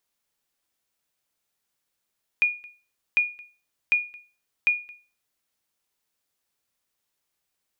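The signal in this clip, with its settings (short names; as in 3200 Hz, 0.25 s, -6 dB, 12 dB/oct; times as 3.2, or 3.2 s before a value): sonar ping 2440 Hz, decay 0.34 s, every 0.75 s, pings 4, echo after 0.22 s, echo -24.5 dB -13 dBFS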